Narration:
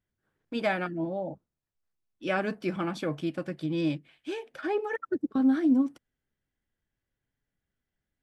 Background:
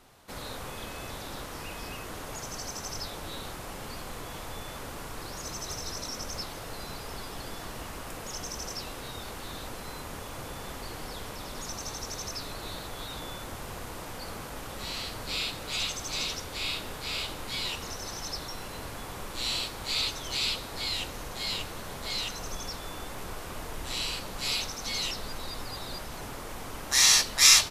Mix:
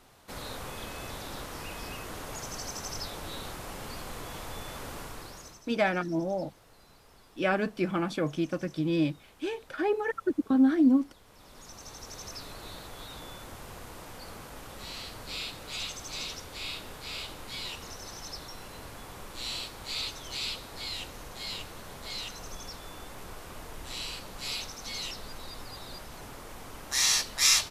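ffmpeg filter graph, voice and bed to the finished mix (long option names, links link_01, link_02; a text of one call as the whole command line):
ffmpeg -i stem1.wav -i stem2.wav -filter_complex "[0:a]adelay=5150,volume=1.5dB[link_01];[1:a]volume=13dB,afade=type=out:start_time=4.97:duration=0.65:silence=0.125893,afade=type=in:start_time=11.25:duration=1.09:silence=0.211349[link_02];[link_01][link_02]amix=inputs=2:normalize=0" out.wav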